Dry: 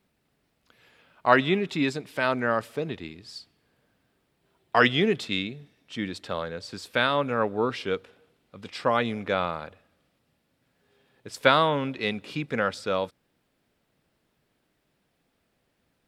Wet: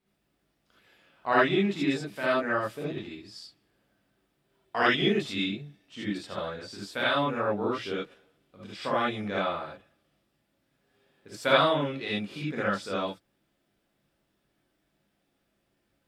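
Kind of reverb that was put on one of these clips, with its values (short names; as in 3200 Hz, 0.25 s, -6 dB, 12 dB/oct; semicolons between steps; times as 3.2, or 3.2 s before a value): non-linear reverb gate 0.1 s rising, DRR -6.5 dB; gain -10 dB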